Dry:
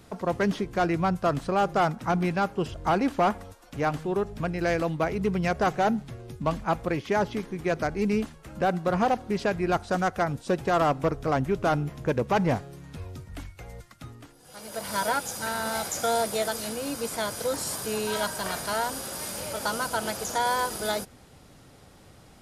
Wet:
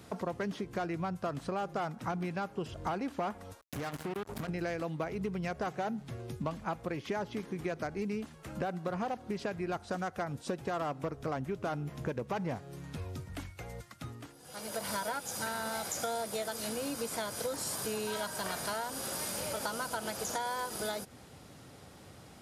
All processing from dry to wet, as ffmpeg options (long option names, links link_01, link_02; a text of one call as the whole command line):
ffmpeg -i in.wav -filter_complex "[0:a]asettb=1/sr,asplit=3[link_01][link_02][link_03];[link_01]atrim=end=3.614[link_04];[link_02]atrim=start=3.61:end=4.49,asetpts=PTS-STARTPTS,afade=type=in:duration=0.004:curve=qsin,afade=type=out:start_time=0.876:duration=0.004:curve=qsin,equalizer=frequency=13000:width=0.95:gain=9.5,acompressor=threshold=-33dB:ratio=12:attack=3.2:release=140:knee=1:detection=peak,acrusher=bits=5:mix=0:aa=0.5[link_05];[link_03]atrim=start=4.486[link_06];[link_04][link_05]acrossfade=duration=0.004:curve1=hsin:curve2=qsin[link_07];[link_07][link_06]acrossfade=duration=0.004:curve1=qsin:curve2=hsin,acompressor=threshold=-33dB:ratio=6,highpass=71" out.wav